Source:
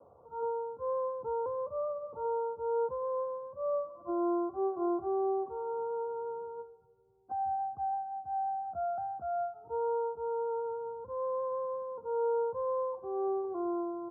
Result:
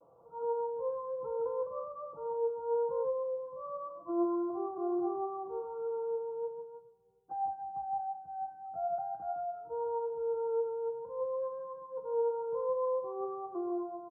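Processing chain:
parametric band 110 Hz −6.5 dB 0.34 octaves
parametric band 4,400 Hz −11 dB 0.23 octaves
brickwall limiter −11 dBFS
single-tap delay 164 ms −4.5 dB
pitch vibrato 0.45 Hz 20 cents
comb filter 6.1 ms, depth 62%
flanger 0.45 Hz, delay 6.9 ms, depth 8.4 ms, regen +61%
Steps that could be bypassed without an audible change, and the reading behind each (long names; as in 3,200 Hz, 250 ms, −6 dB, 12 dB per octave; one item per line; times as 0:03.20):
parametric band 4,400 Hz: nothing at its input above 1,400 Hz
brickwall limiter −11 dBFS: peak of its input −22.5 dBFS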